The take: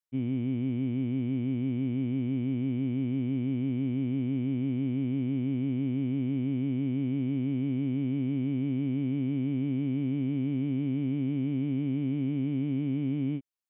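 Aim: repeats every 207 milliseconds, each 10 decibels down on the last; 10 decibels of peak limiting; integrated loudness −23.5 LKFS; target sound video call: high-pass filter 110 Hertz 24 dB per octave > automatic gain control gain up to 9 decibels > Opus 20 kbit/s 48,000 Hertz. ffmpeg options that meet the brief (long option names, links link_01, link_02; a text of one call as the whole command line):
ffmpeg -i in.wav -af "alimiter=level_in=8dB:limit=-24dB:level=0:latency=1,volume=-8dB,highpass=frequency=110:width=0.5412,highpass=frequency=110:width=1.3066,aecho=1:1:207|414|621|828:0.316|0.101|0.0324|0.0104,dynaudnorm=maxgain=9dB,volume=15dB" -ar 48000 -c:a libopus -b:a 20k out.opus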